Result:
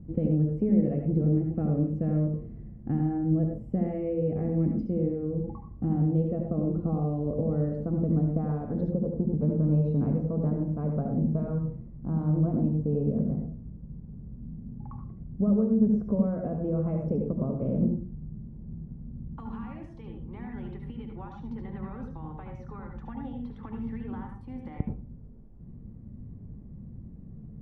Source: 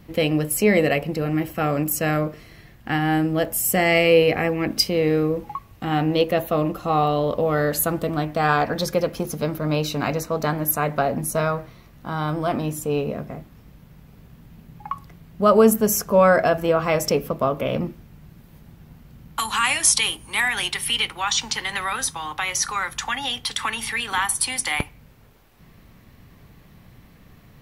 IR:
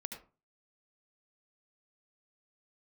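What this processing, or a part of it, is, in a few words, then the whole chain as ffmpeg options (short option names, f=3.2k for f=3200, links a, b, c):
television next door: -filter_complex "[0:a]acompressor=threshold=-23dB:ratio=5,lowpass=260[a];[1:a]atrim=start_sample=2205[b];[a][b]afir=irnorm=-1:irlink=0,asettb=1/sr,asplit=3[c][d][e];[c]atrim=end=8.924[f];[d]atrim=start=8.92:end=9.4,asetpts=PTS-STARTPTS,afade=t=in:d=0.004:c=qsin,afade=t=out:st=0.476:d=0.004:c=qsin,lowpass=f=1.3k:w=0.5412,lowpass=f=1.3k:w=1.3066[g];[e]atrim=start=9.396[h];[f][g]acrossfade=d=0.004:c1=hsin:c2=qsin[i];[i][h]acrossfade=d=0.004:c1=qsin:c2=hsin,volume=8dB"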